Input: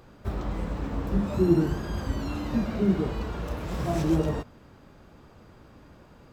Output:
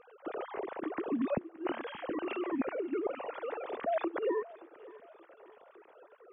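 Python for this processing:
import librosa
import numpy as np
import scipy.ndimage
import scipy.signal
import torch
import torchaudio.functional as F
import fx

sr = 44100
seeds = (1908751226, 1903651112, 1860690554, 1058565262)

y = fx.sine_speech(x, sr)
y = fx.peak_eq(y, sr, hz=540.0, db=3.0, octaves=1.3)
y = fx.over_compress(y, sr, threshold_db=-28.0, ratio=-0.5)
y = fx.echo_feedback(y, sr, ms=576, feedback_pct=45, wet_db=-20.0)
y = F.gain(torch.from_numpy(y), -4.5).numpy()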